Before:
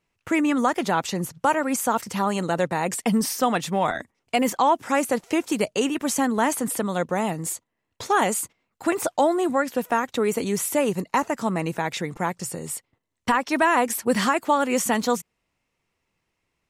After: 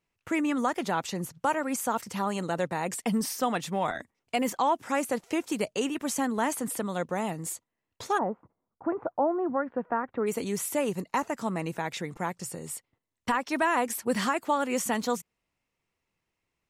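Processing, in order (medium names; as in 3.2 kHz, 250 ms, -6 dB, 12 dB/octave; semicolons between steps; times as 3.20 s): 8.17–10.26 s: low-pass 1 kHz -> 1.8 kHz 24 dB/octave; trim -6 dB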